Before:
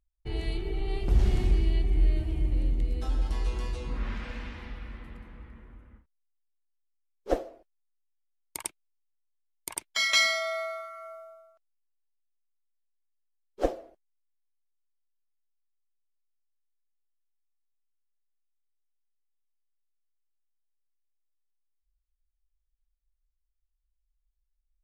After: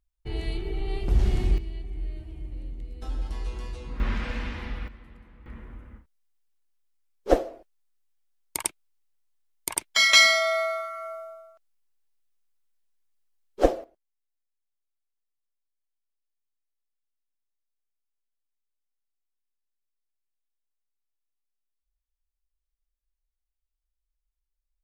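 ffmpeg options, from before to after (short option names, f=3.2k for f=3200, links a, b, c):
-af "asetnsamples=n=441:p=0,asendcmd='1.58 volume volume -10dB;3.02 volume volume -3dB;4 volume volume 6.5dB;4.88 volume volume -5dB;5.46 volume volume 7dB;13.84 volume volume -5dB',volume=1dB"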